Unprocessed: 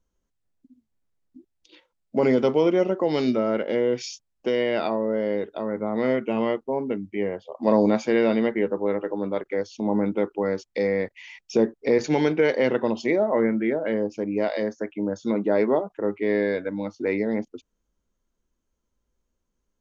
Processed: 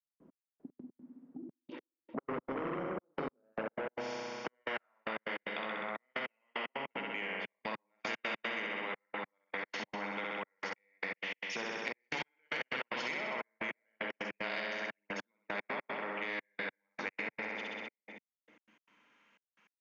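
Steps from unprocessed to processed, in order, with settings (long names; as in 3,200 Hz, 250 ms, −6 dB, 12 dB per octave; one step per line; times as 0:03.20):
on a send: flutter between parallel walls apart 11 metres, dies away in 1.3 s
on the sum: convolution reverb RT60 1.5 s, pre-delay 4 ms, DRR 14 dB
in parallel at +1.5 dB: brickwall limiter −16.5 dBFS, peak gain reduction 11 dB
on the sum: band-pass filter sweep 340 Hz → 2,400 Hz, 0:02.98–0:05.48
soft clipping −14.5 dBFS, distortion −15 dB
graphic EQ with 15 bands 160 Hz +12 dB, 400 Hz −6 dB, 1,000 Hz +3 dB, 4,000 Hz −9 dB
gate pattern "..x...x.x.xxxxx" 151 BPM −60 dB
downward compressor 2 to 1, threshold −47 dBFS, peak gain reduction 15 dB
three-way crossover with the lows and the highs turned down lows −15 dB, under 190 Hz, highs −21 dB, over 4,700 Hz
every bin compressed towards the loudest bin 2 to 1
level +4.5 dB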